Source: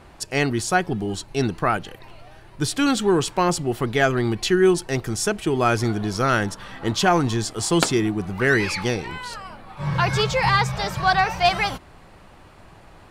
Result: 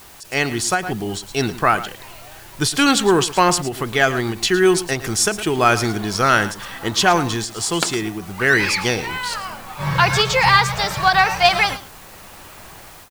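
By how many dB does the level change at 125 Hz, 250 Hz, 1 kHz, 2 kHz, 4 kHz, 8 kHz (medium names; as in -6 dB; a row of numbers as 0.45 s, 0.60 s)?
-0.5 dB, +0.5 dB, +4.5 dB, +6.0 dB, +6.5 dB, +6.5 dB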